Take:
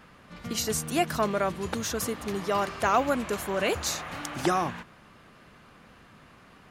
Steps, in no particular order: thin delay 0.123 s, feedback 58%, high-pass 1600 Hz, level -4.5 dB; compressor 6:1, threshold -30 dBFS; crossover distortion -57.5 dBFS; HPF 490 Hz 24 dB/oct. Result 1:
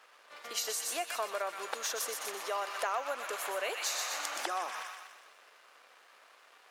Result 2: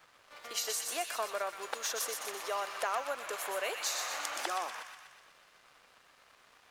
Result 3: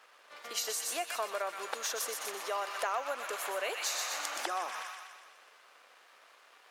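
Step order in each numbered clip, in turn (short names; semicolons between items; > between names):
thin delay > crossover distortion > compressor > HPF; compressor > HPF > crossover distortion > thin delay; crossover distortion > thin delay > compressor > HPF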